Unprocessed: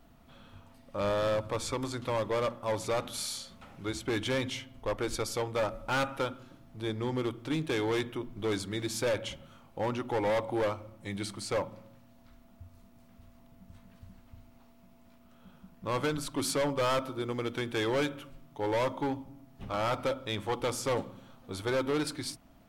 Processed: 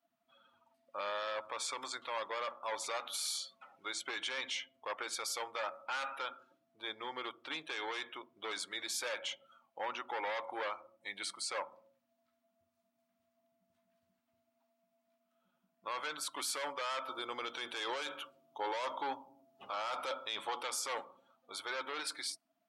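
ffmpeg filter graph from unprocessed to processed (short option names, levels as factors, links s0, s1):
-filter_complex "[0:a]asettb=1/sr,asplit=3[s0][s1][s2];[s0]atrim=end=17.084[s3];[s1]atrim=start=17.08:end=20.63,asetpts=PTS-STARTPTS,afade=t=in:d=0.004:c=qsin,afade=t=out:st=3.546:d=0.004:c=qsin,equalizer=f=1900:w=1.8:g=-5,acontrast=37[s4];[s2]atrim=start=20.626[s5];[s3][s4]acrossfade=d=0.004:c1=hsin:c2=qsin[s6];[s6][s5]acrossfade=d=0.004:c1=qsin:c2=hsin,afftdn=nr=21:nf=-51,highpass=1000,alimiter=level_in=2.11:limit=0.0631:level=0:latency=1:release=21,volume=0.473,volume=1.26"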